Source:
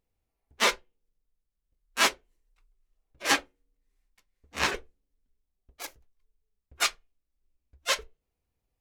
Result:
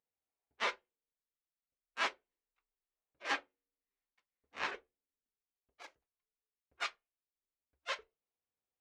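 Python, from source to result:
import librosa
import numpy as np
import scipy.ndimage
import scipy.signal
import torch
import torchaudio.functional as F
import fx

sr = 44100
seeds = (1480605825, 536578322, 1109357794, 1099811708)

y = fx.highpass(x, sr, hz=940.0, slope=6)
y = fx.spacing_loss(y, sr, db_at_10k=27)
y = y * 10.0 ** (-4.0 / 20.0)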